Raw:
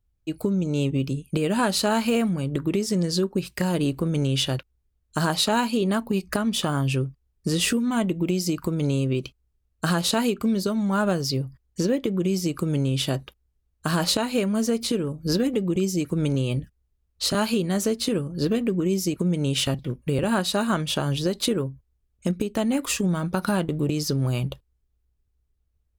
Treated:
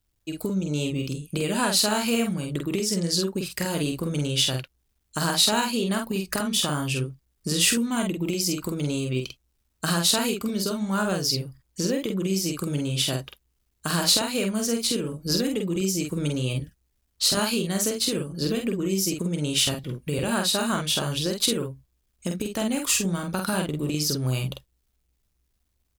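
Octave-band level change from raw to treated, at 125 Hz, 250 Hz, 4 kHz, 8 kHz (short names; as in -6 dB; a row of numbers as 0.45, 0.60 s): -3.5, -3.0, +4.0, +5.5 dB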